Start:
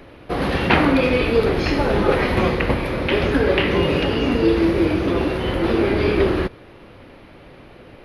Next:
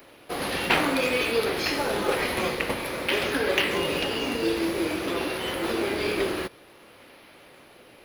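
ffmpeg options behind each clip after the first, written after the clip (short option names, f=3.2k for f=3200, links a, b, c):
-filter_complex "[0:a]aemphasis=mode=production:type=riaa,asplit=2[a][b];[b]acrusher=samples=13:mix=1:aa=0.000001:lfo=1:lforange=20.8:lforate=0.52,volume=-10dB[c];[a][c]amix=inputs=2:normalize=0,volume=-7dB"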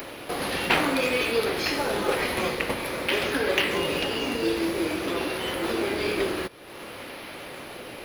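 -af "acompressor=mode=upward:threshold=-27dB:ratio=2.5"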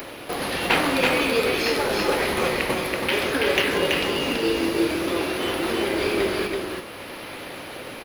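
-af "aecho=1:1:330:0.708,volume=1.5dB"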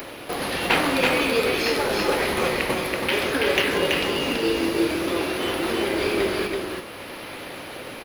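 -af anull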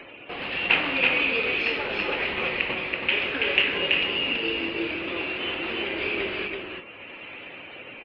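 -af "afftdn=nr=20:nf=-40,lowpass=f=2.7k:t=q:w=5,volume=-8.5dB"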